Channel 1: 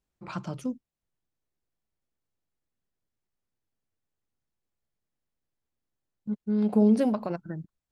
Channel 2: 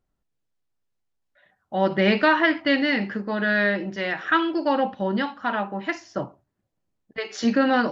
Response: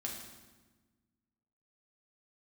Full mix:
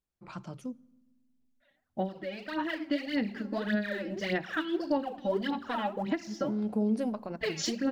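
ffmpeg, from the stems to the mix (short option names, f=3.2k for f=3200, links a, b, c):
-filter_complex "[0:a]volume=-7.5dB,asplit=2[a][b];[b]volume=-21dB[c];[1:a]equalizer=f=1.3k:t=o:w=1.7:g=-8.5,acompressor=threshold=-30dB:ratio=10,aphaser=in_gain=1:out_gain=1:delay=3.7:decay=0.75:speed=1.7:type=sinusoidal,adelay=250,volume=-0.5dB,afade=t=in:st=2.4:d=0.49:silence=0.421697,asplit=2[d][e];[e]volume=-17.5dB[f];[2:a]atrim=start_sample=2205[g];[c][f]amix=inputs=2:normalize=0[h];[h][g]afir=irnorm=-1:irlink=0[i];[a][d][i]amix=inputs=3:normalize=0,alimiter=limit=-19.5dB:level=0:latency=1:release=291"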